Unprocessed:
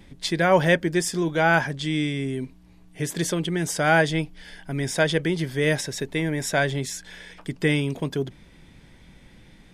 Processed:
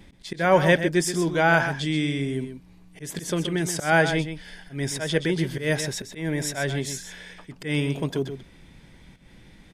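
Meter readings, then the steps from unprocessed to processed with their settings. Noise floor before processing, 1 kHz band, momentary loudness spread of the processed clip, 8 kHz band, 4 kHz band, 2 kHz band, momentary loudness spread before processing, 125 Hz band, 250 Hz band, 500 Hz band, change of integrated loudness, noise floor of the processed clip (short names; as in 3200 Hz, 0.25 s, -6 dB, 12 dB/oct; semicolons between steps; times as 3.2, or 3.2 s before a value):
-52 dBFS, -0.5 dB, 18 LU, -0.5 dB, -1.0 dB, -1.0 dB, 14 LU, -1.0 dB, -0.5 dB, -1.0 dB, -0.5 dB, -52 dBFS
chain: auto swell 0.146 s; echo 0.128 s -9.5 dB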